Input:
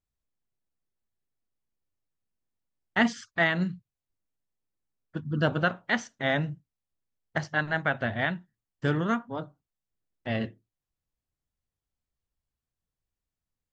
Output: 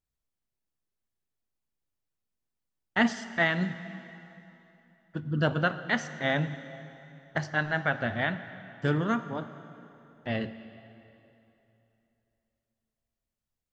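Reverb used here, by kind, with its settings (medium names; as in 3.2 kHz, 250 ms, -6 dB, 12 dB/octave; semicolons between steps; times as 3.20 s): plate-style reverb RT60 3.1 s, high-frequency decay 0.85×, DRR 11 dB; trim -1 dB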